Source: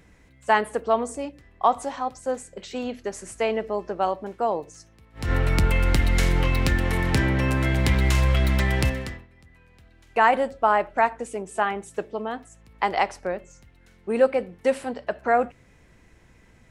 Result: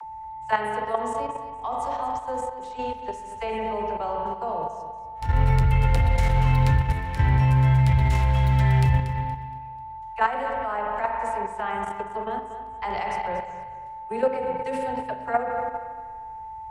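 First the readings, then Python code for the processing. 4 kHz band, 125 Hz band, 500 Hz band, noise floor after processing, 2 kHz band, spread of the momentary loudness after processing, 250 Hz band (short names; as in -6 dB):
-7.0 dB, +4.5 dB, -4.5 dB, -38 dBFS, -5.0 dB, 17 LU, -3.5 dB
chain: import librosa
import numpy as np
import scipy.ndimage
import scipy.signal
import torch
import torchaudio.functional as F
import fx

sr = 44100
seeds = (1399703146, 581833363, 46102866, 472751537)

p1 = fx.spec_box(x, sr, start_s=5.93, length_s=0.24, low_hz=480.0, high_hz=970.0, gain_db=9)
p2 = fx.peak_eq(p1, sr, hz=330.0, db=-3.5, octaves=0.5)
p3 = fx.hpss(p2, sr, part='percussive', gain_db=-4)
p4 = fx.low_shelf_res(p3, sr, hz=150.0, db=9.0, q=1.5)
p5 = fx.rev_spring(p4, sr, rt60_s=1.7, pass_ms=(38, 50), chirp_ms=50, drr_db=1.5)
p6 = fx.rider(p5, sr, range_db=4, speed_s=2.0)
p7 = p5 + (p6 * 10.0 ** (-2.5 / 20.0))
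p8 = p7 + 10.0 ** (-19.0 / 20.0) * np.sin(2.0 * np.pi * 880.0 * np.arange(len(p7)) / sr)
p9 = fx.dispersion(p8, sr, late='lows', ms=42.0, hz=460.0)
p10 = fx.level_steps(p9, sr, step_db=10)
p11 = p10 + fx.echo_feedback(p10, sr, ms=235, feedback_pct=28, wet_db=-12, dry=0)
y = p11 * 10.0 ** (-8.0 / 20.0)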